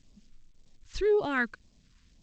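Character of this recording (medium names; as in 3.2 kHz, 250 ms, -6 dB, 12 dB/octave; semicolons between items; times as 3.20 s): a quantiser's noise floor 12-bit, dither none; phasing stages 2, 1.9 Hz, lowest notch 580–1500 Hz; G.722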